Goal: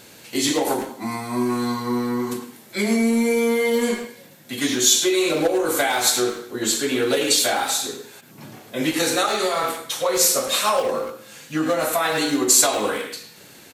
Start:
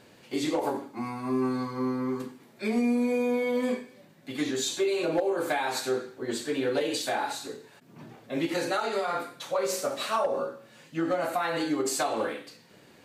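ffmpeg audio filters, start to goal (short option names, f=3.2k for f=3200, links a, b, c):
-filter_complex "[0:a]asplit=2[a][b];[b]adelay=100,highpass=300,lowpass=3.4k,asoftclip=type=hard:threshold=-28.5dB,volume=-7dB[c];[a][c]amix=inputs=2:normalize=0,asetrate=41895,aresample=44100,crystalizer=i=3.5:c=0,volume=5.5dB"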